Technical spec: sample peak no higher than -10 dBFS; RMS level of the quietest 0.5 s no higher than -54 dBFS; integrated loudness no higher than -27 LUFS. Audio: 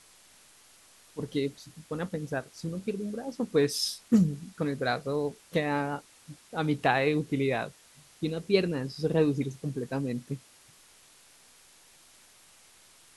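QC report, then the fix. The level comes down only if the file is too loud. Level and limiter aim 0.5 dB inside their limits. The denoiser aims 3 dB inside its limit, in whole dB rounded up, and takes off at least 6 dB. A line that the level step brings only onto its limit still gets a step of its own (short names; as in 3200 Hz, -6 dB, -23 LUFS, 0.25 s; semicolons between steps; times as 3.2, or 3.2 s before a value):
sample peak -9.0 dBFS: fail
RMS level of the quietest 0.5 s -58 dBFS: OK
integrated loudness -30.0 LUFS: OK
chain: limiter -10.5 dBFS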